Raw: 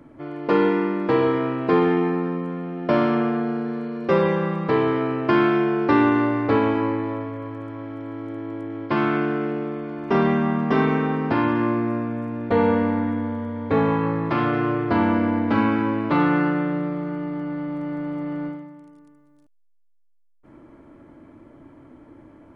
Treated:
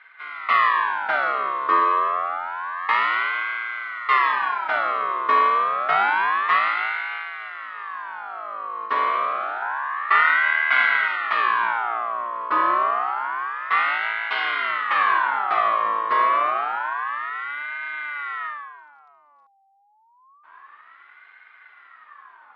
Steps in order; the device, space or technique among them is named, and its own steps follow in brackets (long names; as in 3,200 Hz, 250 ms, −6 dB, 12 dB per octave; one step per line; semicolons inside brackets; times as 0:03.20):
0:09.62–0:11.08: spectral tilt −2 dB per octave
voice changer toy (ring modulator whose carrier an LFO sweeps 1,300 Hz, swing 40%, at 0.28 Hz; loudspeaker in its box 520–4,500 Hz, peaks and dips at 520 Hz −9 dB, 1,100 Hz +8 dB, 2,700 Hz −3 dB)